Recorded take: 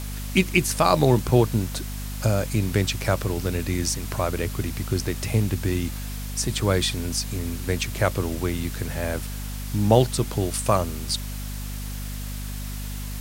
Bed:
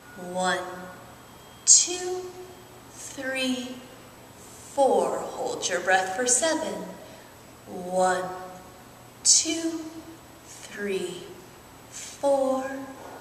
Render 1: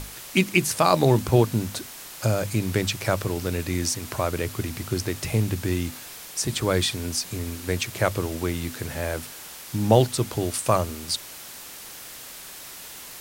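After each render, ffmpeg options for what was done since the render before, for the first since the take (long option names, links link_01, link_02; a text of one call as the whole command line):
ffmpeg -i in.wav -af "bandreject=frequency=50:width_type=h:width=6,bandreject=frequency=100:width_type=h:width=6,bandreject=frequency=150:width_type=h:width=6,bandreject=frequency=200:width_type=h:width=6,bandreject=frequency=250:width_type=h:width=6" out.wav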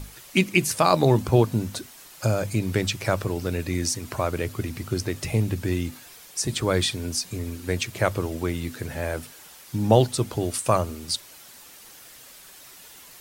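ffmpeg -i in.wav -af "afftdn=noise_reduction=8:noise_floor=-41" out.wav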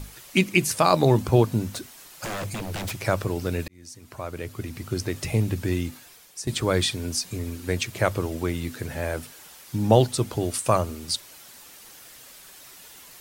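ffmpeg -i in.wav -filter_complex "[0:a]asettb=1/sr,asplit=3[link_01][link_02][link_03];[link_01]atrim=end=1.724[link_04];[link_02]atrim=start=1.72:end=2.99,asetpts=PTS-STARTPTS,afade=type=in:duration=0.004:curve=qsin,afade=type=out:start_time=1.266:duration=0.004:curve=qsin,aeval=exprs='0.0501*(abs(mod(val(0)/0.0501+3,4)-2)-1)':channel_layout=same[link_05];[link_03]atrim=start=2.986[link_06];[link_04][link_05]acrossfade=duration=0.004:curve1=hsin:curve2=qsin[link_07];[link_07][link_06]acrossfade=duration=0.004:curve1=qsin:curve2=hsin,asplit=3[link_08][link_09][link_10];[link_08]atrim=end=3.68,asetpts=PTS-STARTPTS,afade=type=out:start_time=3.676:duration=0.004:curve=hsin[link_11];[link_09]atrim=start=3.68:end=6.47,asetpts=PTS-STARTPTS,afade=type=in:duration=1.5,afade=type=out:start_time=2.11:duration=0.68:silence=0.316228[link_12];[link_10]atrim=start=6.47,asetpts=PTS-STARTPTS,afade=type=in:duration=0.004:curve=hsin:silence=0.316228[link_13];[link_11][link_12][link_13]concat=n=3:v=0:a=1" out.wav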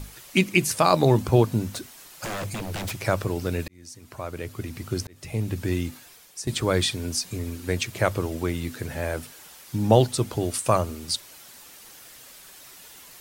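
ffmpeg -i in.wav -filter_complex "[0:a]asplit=2[link_01][link_02];[link_01]atrim=end=5.07,asetpts=PTS-STARTPTS,afade=type=out:start_time=5.066:duration=0.004:curve=hsin[link_03];[link_02]atrim=start=5.07,asetpts=PTS-STARTPTS,afade=type=in:duration=0.79:curve=qsin[link_04];[link_03][link_04]concat=n=2:v=0:a=1" out.wav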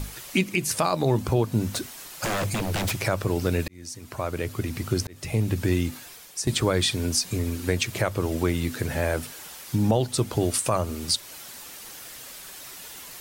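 ffmpeg -i in.wav -filter_complex "[0:a]asplit=2[link_01][link_02];[link_02]acompressor=threshold=-29dB:ratio=6,volume=-1.5dB[link_03];[link_01][link_03]amix=inputs=2:normalize=0,alimiter=limit=-10.5dB:level=0:latency=1:release=227" out.wav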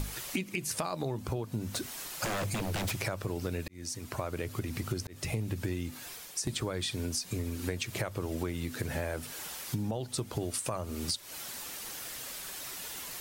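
ffmpeg -i in.wav -af "acompressor=threshold=-31dB:ratio=6" out.wav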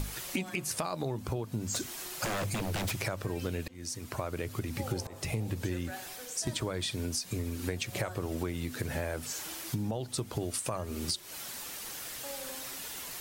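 ffmpeg -i in.wav -i bed.wav -filter_complex "[1:a]volume=-22.5dB[link_01];[0:a][link_01]amix=inputs=2:normalize=0" out.wav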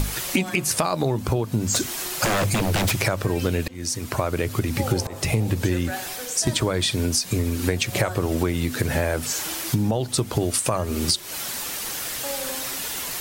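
ffmpeg -i in.wav -af "volume=11.5dB" out.wav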